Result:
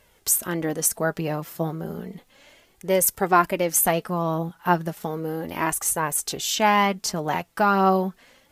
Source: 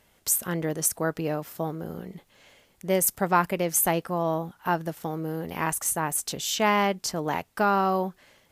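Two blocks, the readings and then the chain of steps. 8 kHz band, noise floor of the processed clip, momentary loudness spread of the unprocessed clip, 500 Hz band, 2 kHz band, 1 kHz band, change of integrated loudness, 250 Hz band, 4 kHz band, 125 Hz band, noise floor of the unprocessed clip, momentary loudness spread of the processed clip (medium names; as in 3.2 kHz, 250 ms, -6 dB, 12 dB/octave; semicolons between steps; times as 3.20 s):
+3.0 dB, -61 dBFS, 10 LU, +3.0 dB, +3.5 dB, +4.0 dB, +3.0 dB, +3.0 dB, +3.0 dB, +3.0 dB, -64 dBFS, 11 LU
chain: flange 0.33 Hz, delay 1.8 ms, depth 4.3 ms, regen +38%; trim +7 dB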